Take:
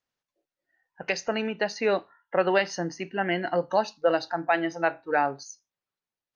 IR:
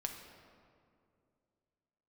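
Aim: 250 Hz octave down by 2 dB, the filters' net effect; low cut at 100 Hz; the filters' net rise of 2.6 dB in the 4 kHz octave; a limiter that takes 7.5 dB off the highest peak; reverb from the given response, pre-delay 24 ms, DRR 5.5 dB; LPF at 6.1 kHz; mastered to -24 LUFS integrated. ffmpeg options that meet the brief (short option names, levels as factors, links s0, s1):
-filter_complex "[0:a]highpass=100,lowpass=6100,equalizer=f=250:t=o:g=-3,equalizer=f=4000:t=o:g=4.5,alimiter=limit=0.133:level=0:latency=1,asplit=2[s0][s1];[1:a]atrim=start_sample=2205,adelay=24[s2];[s1][s2]afir=irnorm=-1:irlink=0,volume=0.562[s3];[s0][s3]amix=inputs=2:normalize=0,volume=1.88"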